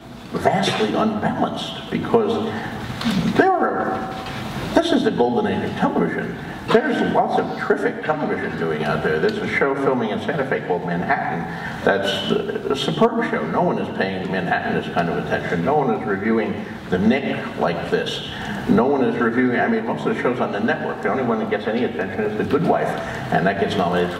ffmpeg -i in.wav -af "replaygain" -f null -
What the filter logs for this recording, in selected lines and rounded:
track_gain = +1.2 dB
track_peak = 0.509